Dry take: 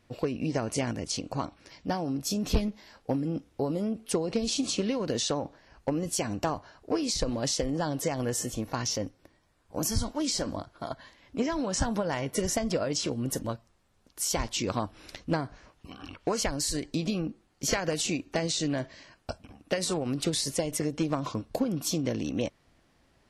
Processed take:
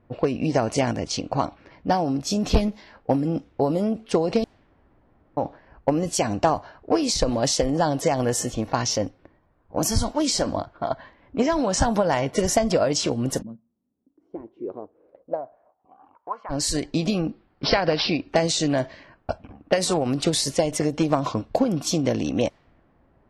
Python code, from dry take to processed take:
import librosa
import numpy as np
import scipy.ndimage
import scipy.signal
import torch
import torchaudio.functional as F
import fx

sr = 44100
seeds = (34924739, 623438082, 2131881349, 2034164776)

y = fx.bandpass_q(x, sr, hz=fx.line((13.41, 190.0), (16.49, 1100.0)), q=5.6, at=(13.41, 16.49), fade=0.02)
y = fx.resample_bad(y, sr, factor=4, down='none', up='filtered', at=(17.3, 18.29))
y = fx.edit(y, sr, fx.room_tone_fill(start_s=4.44, length_s=0.93), tone=tone)
y = fx.env_lowpass(y, sr, base_hz=1100.0, full_db=-25.0)
y = fx.dynamic_eq(y, sr, hz=730.0, q=1.7, threshold_db=-46.0, ratio=4.0, max_db=6)
y = F.gain(torch.from_numpy(y), 6.0).numpy()